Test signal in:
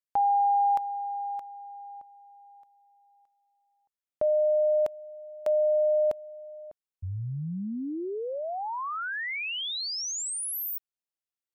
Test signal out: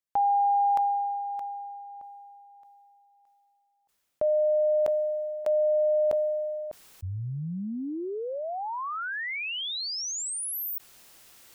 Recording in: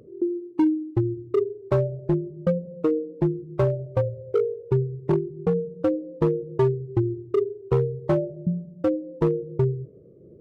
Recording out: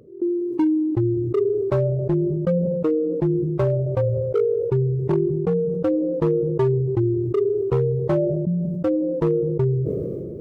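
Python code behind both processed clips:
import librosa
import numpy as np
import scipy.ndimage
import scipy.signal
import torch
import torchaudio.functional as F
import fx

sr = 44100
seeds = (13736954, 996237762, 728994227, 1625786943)

y = fx.sustainer(x, sr, db_per_s=21.0)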